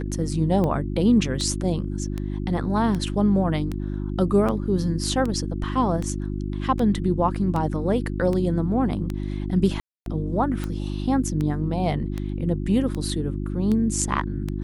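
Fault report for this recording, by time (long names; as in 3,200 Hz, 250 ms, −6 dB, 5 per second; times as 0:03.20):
mains hum 50 Hz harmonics 7 −28 dBFS
scratch tick 78 rpm −16 dBFS
0:07.35: drop-out 2.3 ms
0:09.80–0:10.06: drop-out 262 ms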